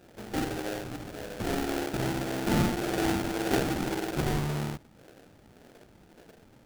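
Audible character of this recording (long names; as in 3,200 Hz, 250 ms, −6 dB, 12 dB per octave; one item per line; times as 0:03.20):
phaser sweep stages 6, 1.8 Hz, lowest notch 470–1,000 Hz
aliases and images of a low sample rate 1,100 Hz, jitter 20%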